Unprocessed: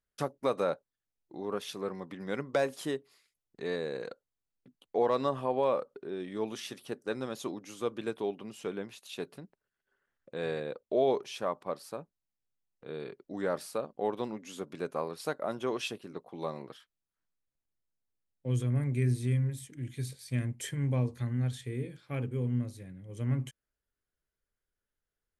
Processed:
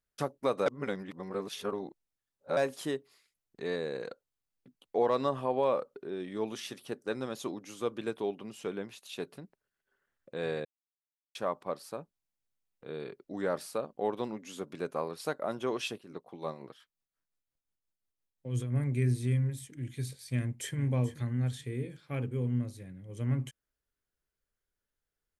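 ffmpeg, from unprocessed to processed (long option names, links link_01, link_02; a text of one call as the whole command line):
ffmpeg -i in.wav -filter_complex "[0:a]asettb=1/sr,asplit=3[link_01][link_02][link_03];[link_01]atrim=end=15.964[link_04];[link_02]atrim=start=15.96:end=18.76,asetpts=PTS-STARTPTS,afade=type=in:duration=0.004:curve=qsin,afade=type=out:start_time=2.796:duration=0.004:curve=qsin,tremolo=f=5.7:d=0.56[link_05];[link_03]atrim=start=18.756[link_06];[link_04][link_05]acrossfade=duration=0.004:curve1=hsin:curve2=qsin[link_07];[link_07][link_06]acrossfade=duration=0.004:curve1=qsin:curve2=hsin,asplit=2[link_08][link_09];[link_09]afade=type=in:start_time=20.35:duration=0.01,afade=type=out:start_time=20.78:duration=0.01,aecho=0:1:430|860|1290:0.188365|0.0470912|0.0117728[link_10];[link_08][link_10]amix=inputs=2:normalize=0,asplit=5[link_11][link_12][link_13][link_14][link_15];[link_11]atrim=end=0.662[link_16];[link_12]atrim=start=0.658:end=2.572,asetpts=PTS-STARTPTS,areverse[link_17];[link_13]atrim=start=2.568:end=10.65,asetpts=PTS-STARTPTS,afade=type=out:start_time=8.078:duration=0.004:curve=hsin[link_18];[link_14]atrim=start=10.65:end=11.35,asetpts=PTS-STARTPTS,volume=0[link_19];[link_15]atrim=start=11.35,asetpts=PTS-STARTPTS,afade=type=in:duration=0.004:curve=hsin[link_20];[link_16][link_17]acrossfade=duration=0.004:curve1=hsin:curve2=hsin[link_21];[link_18][link_19][link_20]concat=n=3:v=0:a=1[link_22];[link_21][link_22]acrossfade=duration=0.004:curve1=hsin:curve2=hsin" out.wav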